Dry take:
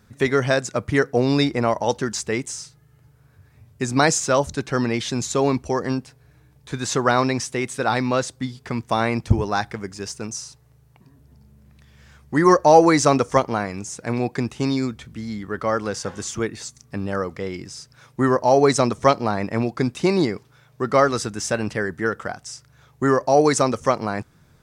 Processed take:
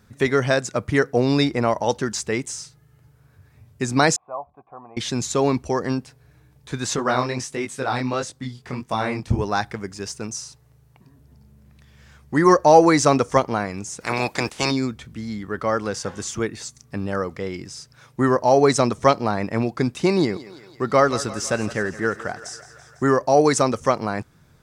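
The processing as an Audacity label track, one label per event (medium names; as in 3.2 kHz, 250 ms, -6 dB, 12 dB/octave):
4.160000	4.970000	cascade formant filter a
6.960000	9.390000	chorus 1.5 Hz, delay 19 ms, depth 6.1 ms
14.000000	14.700000	spectral peaks clipped ceiling under each frame's peak by 21 dB
20.130000	23.030000	thinning echo 167 ms, feedback 69%, high-pass 340 Hz, level -15 dB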